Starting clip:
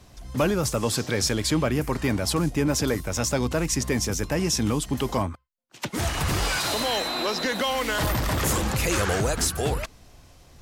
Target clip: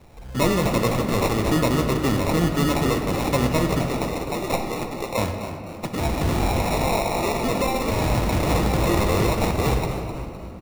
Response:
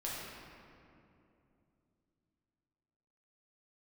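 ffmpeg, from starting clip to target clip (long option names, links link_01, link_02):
-filter_complex "[0:a]asettb=1/sr,asplit=3[link_01][link_02][link_03];[link_01]atrim=end=3.854[link_04];[link_02]atrim=start=3.85:end=5.18,asetpts=PTS-STARTPTS,afade=type=in:duration=0.004:curve=qsin,afade=type=out:start_time=1.326:duration=0.004:curve=qsin,highpass=560[link_05];[link_03]atrim=start=5.176[link_06];[link_04][link_05]acrossfade=duration=0.004:curve1=hsin:curve2=qsin[link_07];[link_07][link_06]acrossfade=duration=0.004:curve1=qsin:curve2=hsin,acrusher=samples=28:mix=1:aa=0.000001,asplit=5[link_08][link_09][link_10][link_11][link_12];[link_09]adelay=256,afreqshift=69,volume=-11.5dB[link_13];[link_10]adelay=512,afreqshift=138,volume=-18.8dB[link_14];[link_11]adelay=768,afreqshift=207,volume=-26.2dB[link_15];[link_12]adelay=1024,afreqshift=276,volume=-33.5dB[link_16];[link_08][link_13][link_14][link_15][link_16]amix=inputs=5:normalize=0,asplit=2[link_17][link_18];[1:a]atrim=start_sample=2205[link_19];[link_18][link_19]afir=irnorm=-1:irlink=0,volume=-4dB[link_20];[link_17][link_20]amix=inputs=2:normalize=0,volume=-1dB"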